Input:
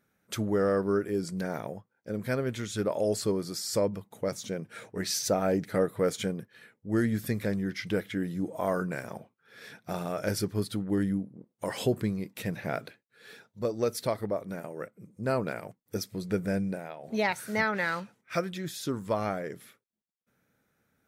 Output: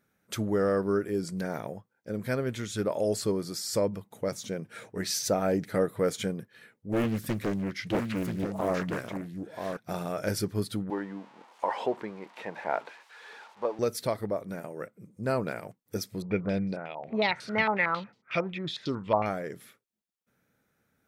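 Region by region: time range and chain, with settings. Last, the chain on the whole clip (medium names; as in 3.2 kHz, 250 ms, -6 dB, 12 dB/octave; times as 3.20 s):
6.92–9.77 s: delay 984 ms -6 dB + loudspeaker Doppler distortion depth 0.98 ms
10.90–13.79 s: zero-crossing glitches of -31 dBFS + band-pass 400–2200 Hz + peaking EQ 900 Hz +14 dB 0.53 oct
16.22–19.26 s: peaking EQ 1.6 kHz -7.5 dB 0.42 oct + step-sequenced low-pass 11 Hz 910–4600 Hz
whole clip: none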